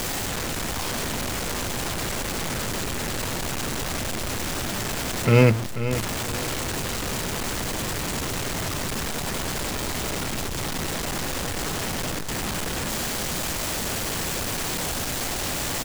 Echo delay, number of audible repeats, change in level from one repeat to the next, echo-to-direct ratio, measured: 0.488 s, 2, -9.5 dB, -10.5 dB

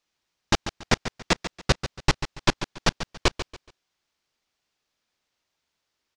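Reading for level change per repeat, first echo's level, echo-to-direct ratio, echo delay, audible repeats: -11.0 dB, -11.0 dB, -10.5 dB, 0.141 s, 3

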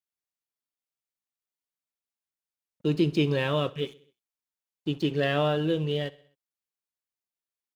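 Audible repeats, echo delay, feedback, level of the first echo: 3, 64 ms, 54%, -21.0 dB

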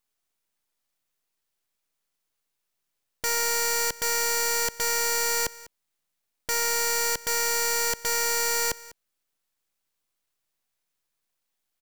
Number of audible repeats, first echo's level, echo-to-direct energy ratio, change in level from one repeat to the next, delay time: 1, -19.5 dB, -19.5 dB, no steady repeat, 0.199 s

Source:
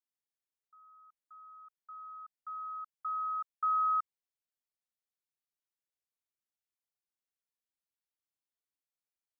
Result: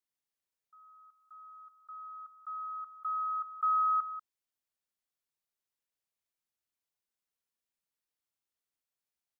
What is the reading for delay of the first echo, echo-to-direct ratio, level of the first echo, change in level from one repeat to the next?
0.19 s, -12.5 dB, -12.5 dB, no steady repeat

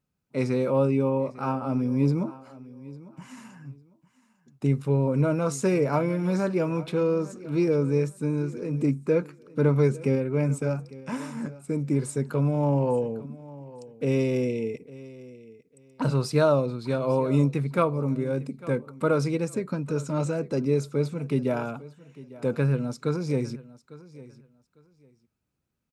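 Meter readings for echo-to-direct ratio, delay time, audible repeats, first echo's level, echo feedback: -19.0 dB, 0.851 s, 2, -19.0 dB, 21%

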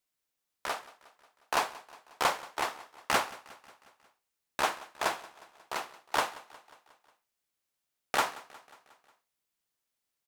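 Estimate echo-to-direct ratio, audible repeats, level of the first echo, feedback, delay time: -18.0 dB, 4, -20.0 dB, 59%, 0.18 s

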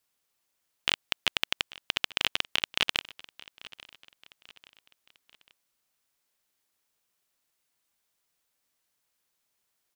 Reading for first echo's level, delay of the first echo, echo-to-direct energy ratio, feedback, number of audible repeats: -20.5 dB, 0.84 s, -19.5 dB, 44%, 3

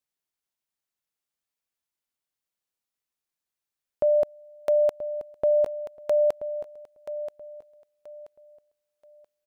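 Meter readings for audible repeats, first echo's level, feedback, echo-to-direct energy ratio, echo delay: 3, -12.0 dB, 28%, -11.5 dB, 0.98 s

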